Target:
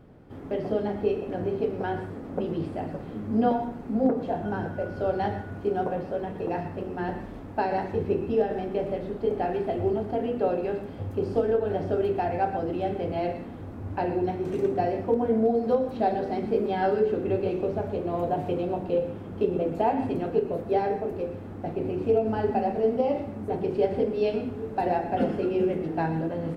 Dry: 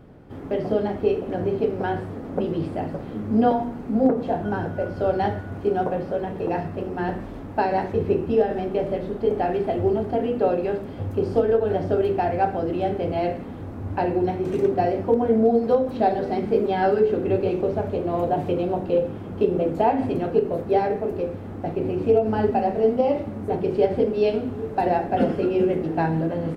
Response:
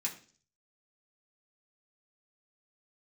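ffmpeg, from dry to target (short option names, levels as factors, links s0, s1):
-filter_complex "[0:a]asplit=2[s0][s1];[1:a]atrim=start_sample=2205,adelay=111[s2];[s1][s2]afir=irnorm=-1:irlink=0,volume=0.224[s3];[s0][s3]amix=inputs=2:normalize=0,volume=0.596"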